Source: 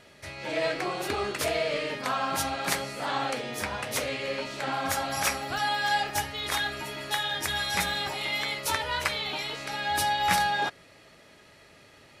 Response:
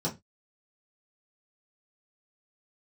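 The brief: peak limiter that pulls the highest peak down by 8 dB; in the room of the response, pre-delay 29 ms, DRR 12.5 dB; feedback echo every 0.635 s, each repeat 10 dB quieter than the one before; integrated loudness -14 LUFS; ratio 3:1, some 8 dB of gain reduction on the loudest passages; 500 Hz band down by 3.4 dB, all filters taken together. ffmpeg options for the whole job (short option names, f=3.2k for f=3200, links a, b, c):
-filter_complex "[0:a]equalizer=f=500:t=o:g=-4.5,acompressor=threshold=-33dB:ratio=3,alimiter=level_in=2dB:limit=-24dB:level=0:latency=1,volume=-2dB,aecho=1:1:635|1270|1905|2540:0.316|0.101|0.0324|0.0104,asplit=2[a][b];[1:a]atrim=start_sample=2205,adelay=29[c];[b][c]afir=irnorm=-1:irlink=0,volume=-19dB[d];[a][d]amix=inputs=2:normalize=0,volume=21dB"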